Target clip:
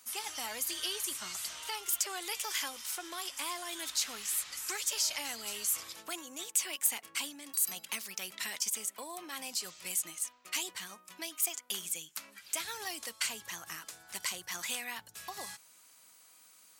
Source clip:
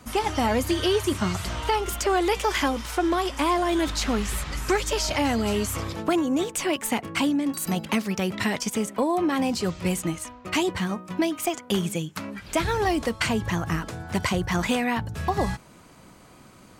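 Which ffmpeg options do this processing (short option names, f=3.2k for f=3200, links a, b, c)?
-af "aderivative"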